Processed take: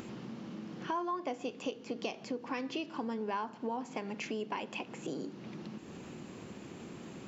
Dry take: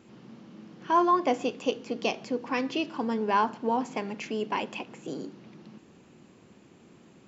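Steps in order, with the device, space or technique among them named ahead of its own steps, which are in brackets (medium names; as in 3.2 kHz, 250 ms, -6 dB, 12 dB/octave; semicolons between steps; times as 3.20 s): upward and downward compression (upward compressor, threshold -37 dBFS; compression 4:1, threshold -35 dBFS, peak gain reduction 14.5 dB)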